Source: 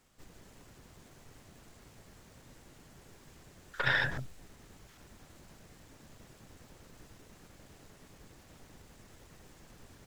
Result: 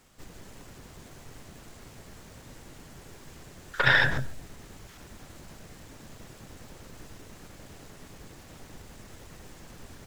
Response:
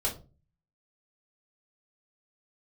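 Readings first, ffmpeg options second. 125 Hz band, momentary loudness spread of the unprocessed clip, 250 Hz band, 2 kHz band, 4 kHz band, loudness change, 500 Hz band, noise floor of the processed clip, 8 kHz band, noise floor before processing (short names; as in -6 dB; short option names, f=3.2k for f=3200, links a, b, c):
+8.0 dB, 19 LU, +8.0 dB, +8.0 dB, +8.0 dB, +8.0 dB, +8.0 dB, -51 dBFS, +8.0 dB, -59 dBFS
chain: -filter_complex "[0:a]asplit=2[a][b];[1:a]atrim=start_sample=2205,adelay=124[c];[b][c]afir=irnorm=-1:irlink=0,volume=-24.5dB[d];[a][d]amix=inputs=2:normalize=0,volume=8dB"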